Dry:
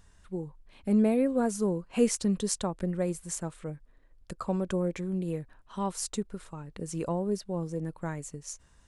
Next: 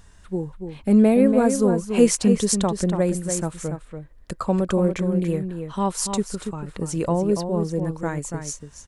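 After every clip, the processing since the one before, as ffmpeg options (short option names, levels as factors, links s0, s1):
-filter_complex "[0:a]asplit=2[s0][s1];[s1]adelay=285.7,volume=0.447,highshelf=f=4000:g=-6.43[s2];[s0][s2]amix=inputs=2:normalize=0,volume=2.66"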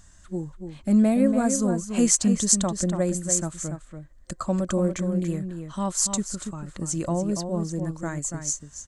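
-af "superequalizer=7b=0.355:9b=0.631:12b=0.708:14b=1.41:15b=2.82,volume=0.708"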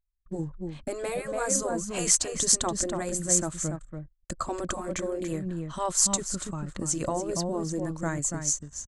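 -af "agate=range=0.0447:threshold=0.00501:ratio=16:detection=peak,afftfilt=real='re*lt(hypot(re,im),0.355)':imag='im*lt(hypot(re,im),0.355)':win_size=1024:overlap=0.75,anlmdn=0.00158,volume=1.19"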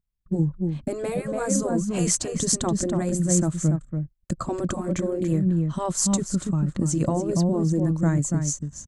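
-af "equalizer=f=160:w=0.51:g=14.5,volume=0.794"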